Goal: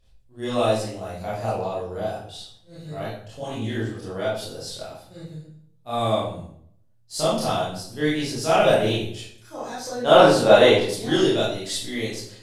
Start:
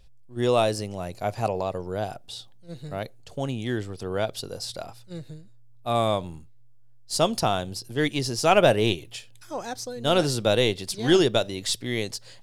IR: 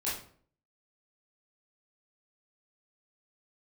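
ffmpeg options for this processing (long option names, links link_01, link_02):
-filter_complex "[0:a]asettb=1/sr,asplit=3[link_01][link_02][link_03];[link_01]atrim=end=2.754[link_04];[link_02]atrim=start=2.75:end=3.79,asetpts=PTS-STARTPTS,afade=type=in:duration=0.004:curve=qsin,afade=type=out:start_time=1.036:duration=0.004:curve=qsin,asplit=2[link_05][link_06];[link_06]adelay=18,volume=-3dB[link_07];[link_05][link_07]amix=inputs=2:normalize=0,atrim=end_sample=45864[link_08];[link_03]atrim=start=3.786[link_09];[link_04][link_08]acrossfade=duration=0.004:curve1=hsin:curve2=qsin[link_10];[link_10][link_09]acrossfade=duration=0.004:curve1=qsin:curve2=hsin,asettb=1/sr,asplit=3[link_11][link_12][link_13];[link_11]atrim=end=9.774[link_14];[link_12]atrim=start=9.77:end=10.83,asetpts=PTS-STARTPTS,afade=type=in:duration=0.004:curve=qsin,afade=type=out:start_time=1.056:duration=0.004:curve=qsin,equalizer=frequency=910:width_type=o:width=2.7:gain=13[link_15];[link_13]atrim=start=10.826[link_16];[link_14][link_15]acrossfade=duration=0.004:curve1=hsin:curve2=qsin[link_17];[link_17][link_16]acrossfade=duration=0.004:curve1=qsin:curve2=hsin[link_18];[1:a]atrim=start_sample=2205,asetrate=32634,aresample=44100[link_19];[link_18][link_19]afir=irnorm=-1:irlink=0,volume=-7dB"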